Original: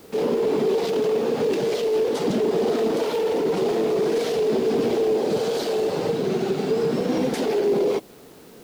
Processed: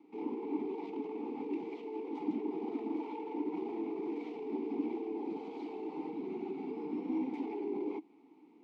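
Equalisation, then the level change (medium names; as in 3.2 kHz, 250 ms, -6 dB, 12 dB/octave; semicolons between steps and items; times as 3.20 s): vowel filter u; high-pass 200 Hz 12 dB/octave; treble shelf 3.6 kHz -9 dB; -2.5 dB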